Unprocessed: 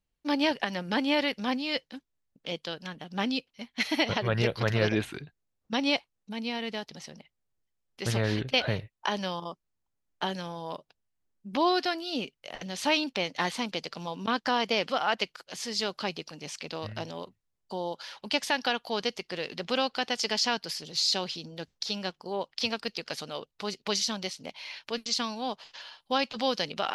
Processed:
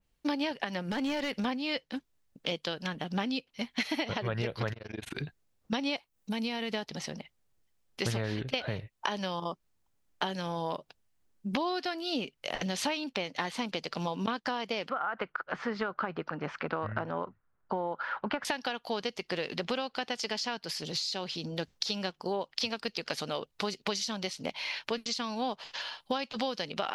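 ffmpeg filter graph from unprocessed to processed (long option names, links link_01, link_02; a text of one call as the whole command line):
ffmpeg -i in.wav -filter_complex "[0:a]asettb=1/sr,asplit=3[link_01][link_02][link_03];[link_01]atrim=end=0.874[link_04];[link_02]atrim=start=0.87:end=1.45,asetpts=PTS-STARTPTS,afade=type=in:duration=0.004:curve=qsin,afade=type=out:start_time=0.576:duration=0.004:curve=qsin,acompressor=threshold=-33dB:ratio=3:attack=3.2:release=140:knee=1:detection=peak,asoftclip=type=hard:threshold=-31.5dB[link_05];[link_03]atrim=start=1.446[link_06];[link_04][link_05]acrossfade=duration=0.004:curve1=hsin:curve2=qsin[link_07];[link_07][link_06]acrossfade=duration=0.004:curve1=qsin:curve2=hsin,asettb=1/sr,asplit=3[link_08][link_09][link_10];[link_08]atrim=end=4.734[link_11];[link_09]atrim=start=4.73:end=5.18,asetpts=PTS-STARTPTS,afade=type=in:duration=0.004:curve=qsin,afade=type=out:start_time=0.446:duration=0.004:curve=qsin,acompressor=threshold=-39dB:ratio=6:attack=3.2:release=140:knee=1:detection=peak,tremolo=f=23:d=0.974[link_12];[link_10]atrim=start=5.176[link_13];[link_11][link_12]acrossfade=duration=0.004:curve1=hsin:curve2=qsin[link_14];[link_14][link_13]acrossfade=duration=0.004:curve1=qsin:curve2=hsin,asettb=1/sr,asplit=3[link_15][link_16][link_17];[link_15]atrim=end=5.964[link_18];[link_16]atrim=start=5.96:end=6.74,asetpts=PTS-STARTPTS,afade=type=in:duration=0.004:curve=qsin,afade=type=out:start_time=0.776:duration=0.004:curve=qsin,highshelf=frequency=10000:gain=11,acompressor=threshold=-35dB:ratio=2.5:attack=3.2:release=140:knee=1:detection=peak[link_19];[link_17]atrim=start=6.736[link_20];[link_18][link_19]acrossfade=duration=0.004:curve1=hsin:curve2=qsin[link_21];[link_21][link_20]acrossfade=duration=0.004:curve1=qsin:curve2=hsin,asettb=1/sr,asplit=3[link_22][link_23][link_24];[link_22]atrim=end=14.894[link_25];[link_23]atrim=start=14.89:end=18.45,asetpts=PTS-STARTPTS,afade=type=in:duration=0.004:curve=qsin,afade=type=out:start_time=3.556:duration=0.004:curve=qsin,lowpass=frequency=1400:width_type=q:width=3.7,acompressor=threshold=-26dB:ratio=6:attack=3.2:release=140:knee=1:detection=peak[link_26];[link_24]atrim=start=18.446[link_27];[link_25][link_26]acrossfade=duration=0.004:curve1=hsin:curve2=qsin[link_28];[link_28][link_27]acrossfade=duration=0.004:curve1=qsin:curve2=hsin,acompressor=threshold=-36dB:ratio=10,adynamicequalizer=threshold=0.002:dfrequency=3300:dqfactor=0.7:tfrequency=3300:tqfactor=0.7:attack=5:release=100:ratio=0.375:range=2:mode=cutabove:tftype=highshelf,volume=7.5dB" out.wav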